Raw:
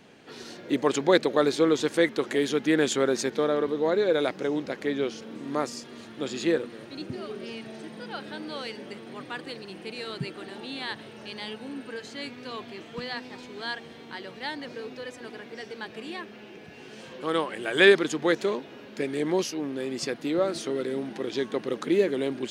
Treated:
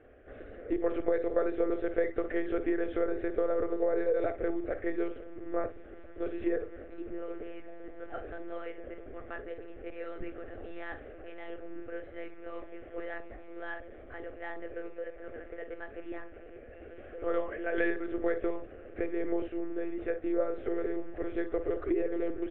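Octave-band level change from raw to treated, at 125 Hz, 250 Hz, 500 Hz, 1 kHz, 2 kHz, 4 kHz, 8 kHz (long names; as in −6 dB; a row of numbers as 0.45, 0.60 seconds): −10.5 dB, −6.0 dB, −6.0 dB, −9.0 dB, −11.0 dB, −26.5 dB, below −40 dB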